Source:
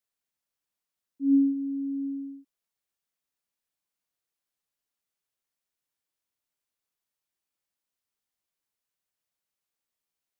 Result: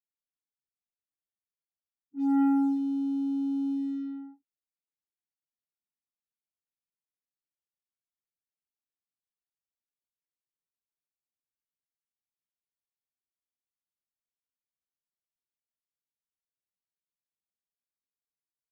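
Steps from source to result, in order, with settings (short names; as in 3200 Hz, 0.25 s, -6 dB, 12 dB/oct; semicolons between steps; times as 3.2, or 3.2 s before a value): sample leveller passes 2; plain phase-vocoder stretch 1.8×; low-pass opened by the level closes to 310 Hz, open at -25.5 dBFS; gain -3 dB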